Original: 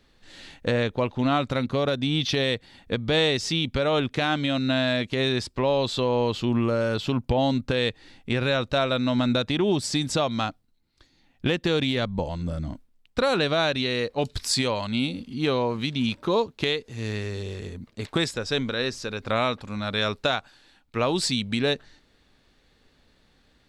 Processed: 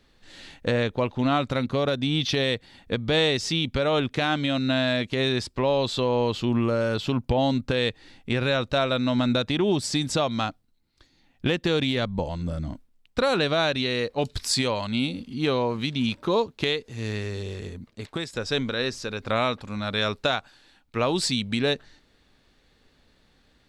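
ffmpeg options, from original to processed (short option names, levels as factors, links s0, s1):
-filter_complex "[0:a]asplit=2[s0][s1];[s0]atrim=end=18.33,asetpts=PTS-STARTPTS,afade=t=out:st=17.68:d=0.65:silence=0.316228[s2];[s1]atrim=start=18.33,asetpts=PTS-STARTPTS,afade=t=in:d=0.004:c=hsin:silence=0.316228[s3];[s2][s3]concat=n=2:v=0:a=1"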